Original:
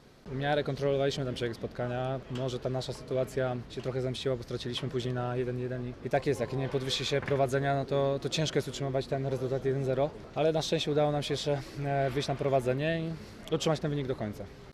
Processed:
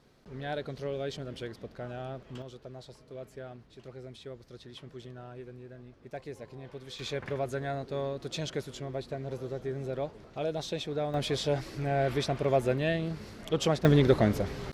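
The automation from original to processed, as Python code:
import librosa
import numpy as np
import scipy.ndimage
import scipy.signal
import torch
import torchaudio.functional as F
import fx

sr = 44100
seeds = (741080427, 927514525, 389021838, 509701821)

y = fx.gain(x, sr, db=fx.steps((0.0, -6.5), (2.42, -13.0), (6.99, -5.5), (11.14, 1.0), (13.85, 10.5)))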